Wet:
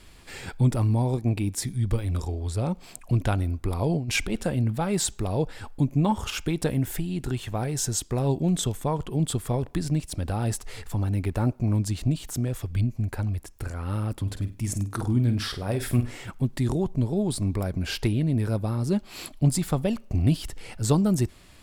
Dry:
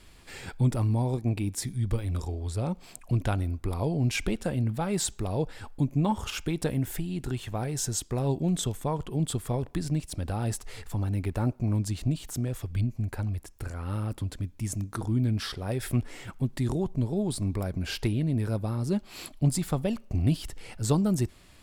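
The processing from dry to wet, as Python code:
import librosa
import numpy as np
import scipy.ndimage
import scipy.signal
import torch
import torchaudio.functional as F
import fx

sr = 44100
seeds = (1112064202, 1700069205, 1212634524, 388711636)

y = fx.over_compress(x, sr, threshold_db=-28.0, ratio=-0.5, at=(3.89, 4.45))
y = fx.room_flutter(y, sr, wall_m=8.5, rt60_s=0.29, at=(14.25, 16.25), fade=0.02)
y = F.gain(torch.from_numpy(y), 3.0).numpy()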